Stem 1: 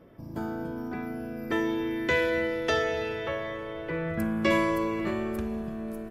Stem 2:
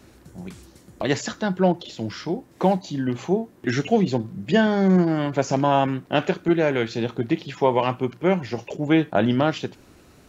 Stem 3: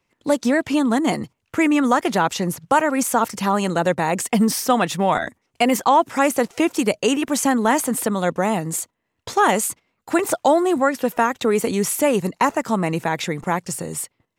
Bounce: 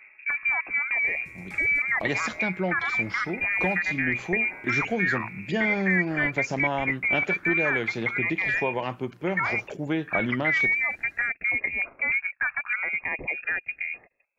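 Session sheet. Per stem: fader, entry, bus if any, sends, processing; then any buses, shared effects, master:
+1.5 dB, 0.00 s, bus A, no send, compression, threshold -33 dBFS, peak gain reduction 12.5 dB; auto duck -11 dB, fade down 0.20 s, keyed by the third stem
-5.0 dB, 1.00 s, no bus, no send, expander -46 dBFS; compression 2:1, threshold -21 dBFS, peak gain reduction 5 dB
-4.0 dB, 0.00 s, bus A, no send, stepped phaser 3.3 Hz 580–5700 Hz
bus A: 0.0 dB, frequency inversion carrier 2.6 kHz; peak limiter -20 dBFS, peak gain reduction 7.5 dB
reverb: none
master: peaking EQ 1.9 kHz +4 dB 0.56 oct

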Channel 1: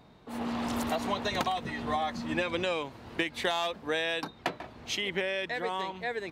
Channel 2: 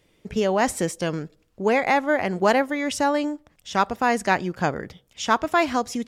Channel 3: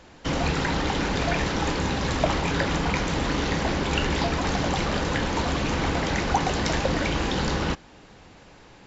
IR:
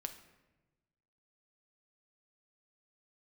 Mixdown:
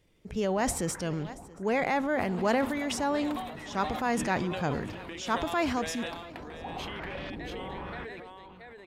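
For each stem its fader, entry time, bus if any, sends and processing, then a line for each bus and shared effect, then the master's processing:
-1.5 dB, 1.90 s, no send, echo send -5 dB, peaking EQ 6 kHz -9 dB 0.67 oct; compression 6:1, threshold -39 dBFS, peak gain reduction 13.5 dB
-8.0 dB, 0.00 s, no send, echo send -22 dB, bass shelf 160 Hz +8.5 dB
-17.0 dB, 0.30 s, no send, echo send -17.5 dB, LFO low-pass saw up 1 Hz 250–3800 Hz; auto duck -19 dB, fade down 1.50 s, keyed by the second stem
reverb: none
echo: delay 679 ms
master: transient shaper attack -3 dB, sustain +7 dB

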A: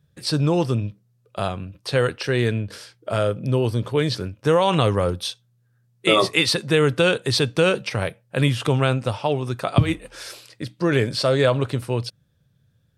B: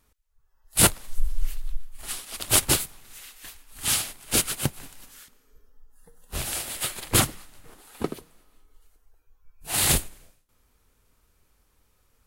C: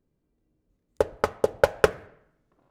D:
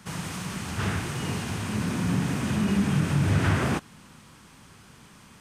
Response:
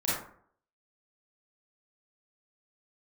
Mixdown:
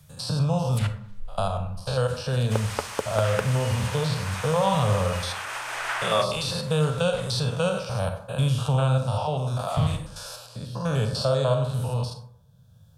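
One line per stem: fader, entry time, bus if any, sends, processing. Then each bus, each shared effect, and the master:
-1.0 dB, 0.00 s, send -13 dB, spectrogram pixelated in time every 100 ms; peaking EQ 280 Hz -4 dB 0.42 oct; static phaser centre 830 Hz, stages 4
-2.0 dB, 0.00 s, send -23 dB, low-pass that closes with the level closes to 2.3 kHz, closed at -21.5 dBFS; amplifier tone stack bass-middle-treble 10-0-10; auto duck -13 dB, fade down 2.00 s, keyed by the first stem
+1.5 dB, 1.55 s, no send, compression, threshold -26 dBFS, peak gain reduction 14 dB
0.0 dB, 2.45 s, no send, high-pass 710 Hz 24 dB/octave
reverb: on, RT60 0.55 s, pre-delay 28 ms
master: three bands compressed up and down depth 40%

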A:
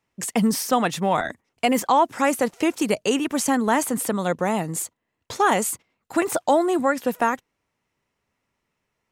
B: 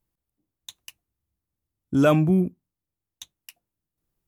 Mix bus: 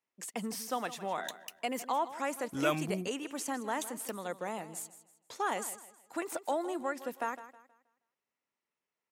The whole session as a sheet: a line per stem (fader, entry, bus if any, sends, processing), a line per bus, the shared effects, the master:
-13.5 dB, 0.00 s, no send, echo send -14.5 dB, Bessel high-pass 300 Hz, order 2
-4.5 dB, 0.60 s, no send, no echo send, tilt shelf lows -7.5 dB, about 680 Hz; auto duck -7 dB, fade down 1.90 s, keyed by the first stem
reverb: none
echo: feedback delay 159 ms, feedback 33%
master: none

